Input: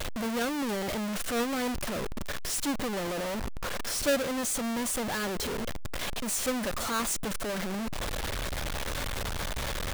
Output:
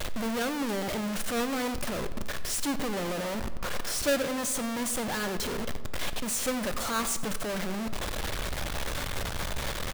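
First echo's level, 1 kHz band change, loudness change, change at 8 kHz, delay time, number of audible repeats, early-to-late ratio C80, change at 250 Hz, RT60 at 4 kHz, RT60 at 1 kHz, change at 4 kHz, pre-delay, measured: −18.5 dB, +0.5 dB, 0.0 dB, 0.0 dB, 92 ms, 1, 13.5 dB, 0.0 dB, 0.95 s, 1.5 s, +0.5 dB, 5 ms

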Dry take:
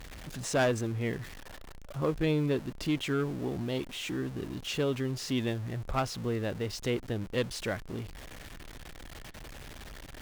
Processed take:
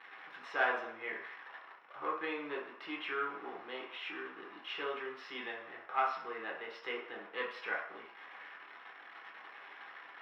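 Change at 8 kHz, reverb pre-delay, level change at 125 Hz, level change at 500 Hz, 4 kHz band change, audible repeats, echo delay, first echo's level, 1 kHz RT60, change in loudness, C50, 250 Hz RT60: below −30 dB, 3 ms, below −35 dB, −9.5 dB, −7.5 dB, no echo audible, no echo audible, no echo audible, 0.65 s, −7.0 dB, 5.0 dB, 0.40 s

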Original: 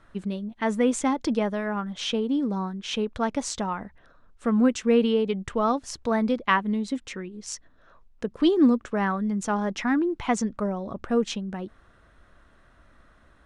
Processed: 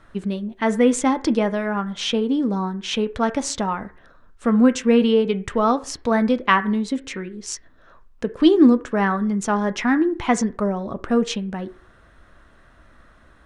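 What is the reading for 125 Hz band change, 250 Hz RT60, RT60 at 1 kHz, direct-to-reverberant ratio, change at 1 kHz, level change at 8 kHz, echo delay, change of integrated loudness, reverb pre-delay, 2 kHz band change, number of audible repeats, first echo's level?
can't be measured, 0.50 s, 0.45 s, 10.0 dB, +5.0 dB, +5.0 dB, no echo audible, +5.0 dB, 7 ms, +5.5 dB, no echo audible, no echo audible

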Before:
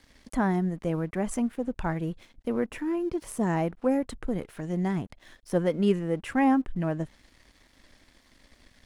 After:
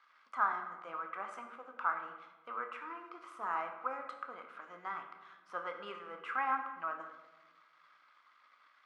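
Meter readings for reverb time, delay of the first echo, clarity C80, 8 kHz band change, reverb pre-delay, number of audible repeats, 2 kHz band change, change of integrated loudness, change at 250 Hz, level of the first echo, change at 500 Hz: 1.2 s, no echo audible, 9.0 dB, below −25 dB, 15 ms, no echo audible, −2.5 dB, −11.0 dB, −30.5 dB, no echo audible, −18.5 dB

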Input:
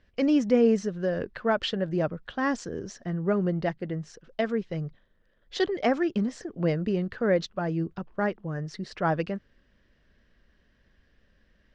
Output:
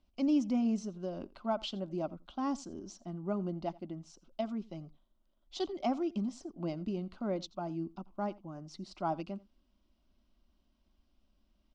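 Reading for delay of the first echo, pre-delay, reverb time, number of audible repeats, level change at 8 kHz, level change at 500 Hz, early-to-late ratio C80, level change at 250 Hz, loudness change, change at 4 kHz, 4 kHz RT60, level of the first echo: 85 ms, no reverb audible, no reverb audible, 1, can't be measured, −12.0 dB, no reverb audible, −7.0 dB, −8.5 dB, −9.0 dB, no reverb audible, −22.0 dB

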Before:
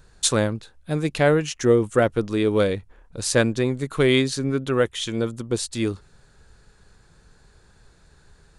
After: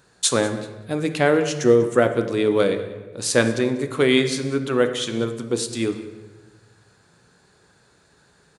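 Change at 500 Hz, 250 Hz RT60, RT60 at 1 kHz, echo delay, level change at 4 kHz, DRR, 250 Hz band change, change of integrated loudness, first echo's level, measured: +2.0 dB, 2.3 s, 1.1 s, 193 ms, +1.5 dB, 7.0 dB, +1.0 dB, +1.5 dB, −19.0 dB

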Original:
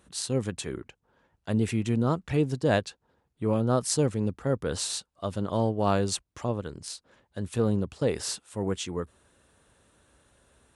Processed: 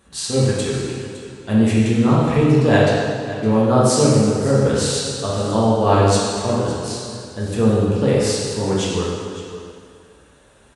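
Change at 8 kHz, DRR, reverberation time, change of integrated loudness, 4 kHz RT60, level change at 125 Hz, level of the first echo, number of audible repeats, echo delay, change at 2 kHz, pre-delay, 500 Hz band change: +9.0 dB, −7.5 dB, 2.2 s, +11.0 dB, 2.1 s, +11.5 dB, −14.5 dB, 1, 561 ms, +12.0 dB, 4 ms, +11.5 dB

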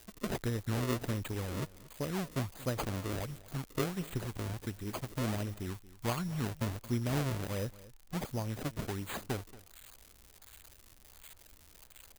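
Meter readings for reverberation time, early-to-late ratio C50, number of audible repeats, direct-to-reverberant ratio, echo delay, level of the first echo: no reverb audible, no reverb audible, 1, no reverb audible, 230 ms, −19.0 dB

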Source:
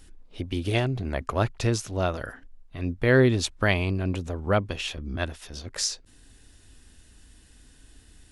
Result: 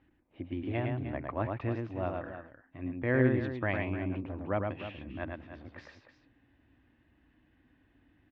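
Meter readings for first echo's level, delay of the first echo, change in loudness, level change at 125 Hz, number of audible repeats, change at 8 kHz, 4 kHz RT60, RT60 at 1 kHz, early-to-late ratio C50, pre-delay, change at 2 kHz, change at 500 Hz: −4.0 dB, 108 ms, −7.5 dB, −8.0 dB, 2, below −40 dB, no reverb audible, no reverb audible, no reverb audible, no reverb audible, −8.5 dB, −7.5 dB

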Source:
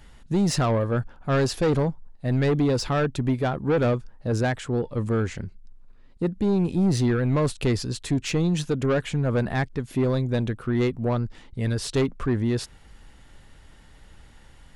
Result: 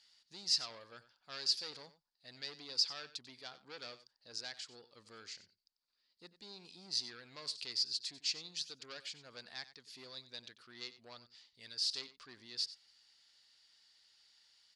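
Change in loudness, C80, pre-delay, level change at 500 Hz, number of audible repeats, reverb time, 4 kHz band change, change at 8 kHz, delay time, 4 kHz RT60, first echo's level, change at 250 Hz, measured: −14.5 dB, no reverb audible, no reverb audible, −31.5 dB, 1, no reverb audible, 0.0 dB, −9.0 dB, 93 ms, no reverb audible, −15.5 dB, −37.0 dB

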